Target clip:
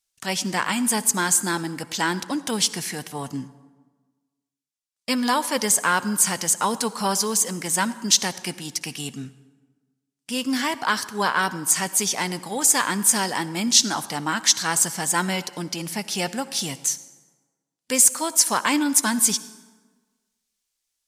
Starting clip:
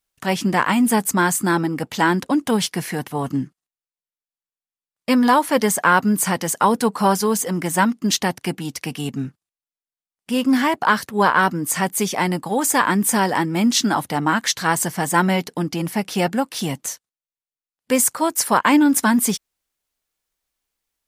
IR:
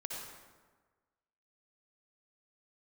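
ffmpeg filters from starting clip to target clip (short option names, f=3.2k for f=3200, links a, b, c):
-filter_complex "[0:a]equalizer=f=6.5k:t=o:w=2.4:g=14,asplit=2[a][b];[1:a]atrim=start_sample=2205[c];[b][c]afir=irnorm=-1:irlink=0,volume=-13dB[d];[a][d]amix=inputs=2:normalize=0,volume=-9.5dB"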